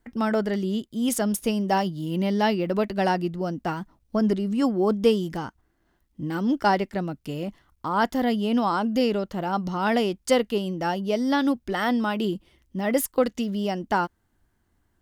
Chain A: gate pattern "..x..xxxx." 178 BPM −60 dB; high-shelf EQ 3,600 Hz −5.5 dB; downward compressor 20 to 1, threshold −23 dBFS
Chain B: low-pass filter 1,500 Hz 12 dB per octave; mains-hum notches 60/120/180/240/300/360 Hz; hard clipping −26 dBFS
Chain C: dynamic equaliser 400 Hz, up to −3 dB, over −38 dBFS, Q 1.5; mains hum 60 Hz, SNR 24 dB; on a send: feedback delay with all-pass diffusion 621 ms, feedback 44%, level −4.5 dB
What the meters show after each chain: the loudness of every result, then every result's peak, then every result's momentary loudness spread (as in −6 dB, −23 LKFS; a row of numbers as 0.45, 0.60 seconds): −31.5, −30.5, −25.0 LKFS; −12.5, −26.0, −9.0 dBFS; 8, 5, 6 LU